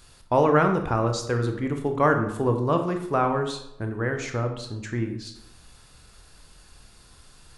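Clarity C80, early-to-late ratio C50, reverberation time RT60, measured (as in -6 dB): 10.5 dB, 8.0 dB, 0.80 s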